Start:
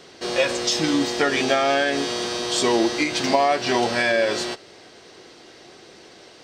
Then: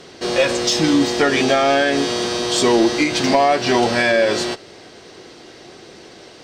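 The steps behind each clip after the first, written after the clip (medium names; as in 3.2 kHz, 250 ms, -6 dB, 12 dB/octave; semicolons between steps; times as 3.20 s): bass shelf 380 Hz +4.5 dB; sine folder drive 3 dB, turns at -4 dBFS; trim -3 dB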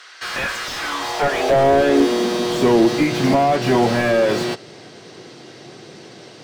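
high-pass sweep 1.4 kHz -> 130 Hz, 0.73–2.72 s; slew-rate limiter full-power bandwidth 160 Hz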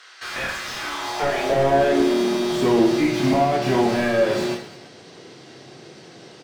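reverse bouncing-ball echo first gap 30 ms, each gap 1.4×, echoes 5; trim -5.5 dB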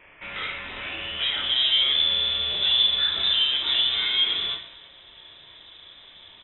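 frequency inversion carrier 3.8 kHz; trim -4 dB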